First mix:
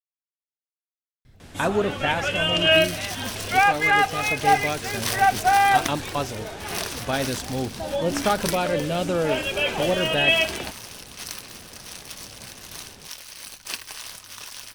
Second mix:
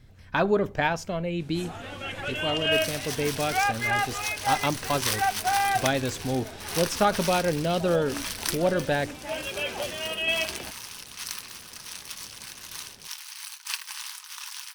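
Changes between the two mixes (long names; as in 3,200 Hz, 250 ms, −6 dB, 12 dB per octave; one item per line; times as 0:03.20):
speech: entry −1.25 s
first sound −7.0 dB
second sound: add linear-phase brick-wall high-pass 810 Hz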